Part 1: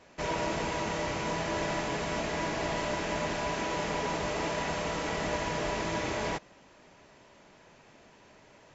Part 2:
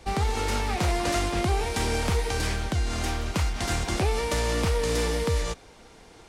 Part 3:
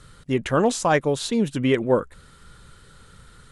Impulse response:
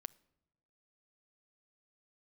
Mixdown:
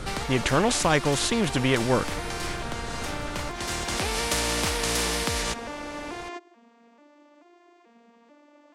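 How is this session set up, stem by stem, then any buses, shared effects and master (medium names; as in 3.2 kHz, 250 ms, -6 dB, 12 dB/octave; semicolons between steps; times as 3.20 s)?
-14.0 dB, 0.00 s, no send, vocoder on a broken chord major triad, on A#3, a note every 436 ms; high-pass 230 Hz
-8.5 dB, 0.00 s, no send, auto duck -11 dB, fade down 0.30 s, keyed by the third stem
-3.5 dB, 0.00 s, no send, tilt EQ -2.5 dB/octave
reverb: none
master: spectrum-flattening compressor 2:1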